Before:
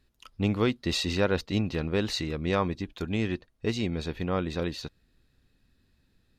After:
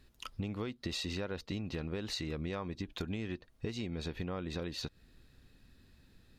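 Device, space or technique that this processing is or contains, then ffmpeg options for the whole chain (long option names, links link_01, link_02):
serial compression, peaks first: -af "acompressor=threshold=-35dB:ratio=4,acompressor=threshold=-43dB:ratio=2.5,volume=5.5dB"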